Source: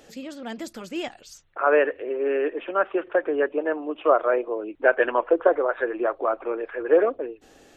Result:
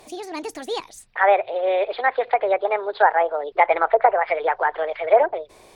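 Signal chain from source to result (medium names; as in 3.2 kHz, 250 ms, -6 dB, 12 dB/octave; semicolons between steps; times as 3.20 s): low-pass that closes with the level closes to 1.3 kHz, closed at -17.5 dBFS; speed mistake 33 rpm record played at 45 rpm; trim +3.5 dB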